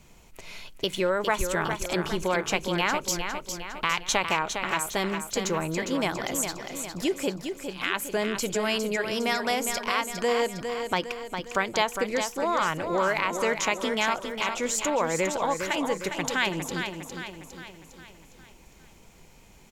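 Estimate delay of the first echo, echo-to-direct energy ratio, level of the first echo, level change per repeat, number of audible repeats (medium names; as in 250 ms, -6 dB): 407 ms, -5.5 dB, -7.0 dB, -6.0 dB, 5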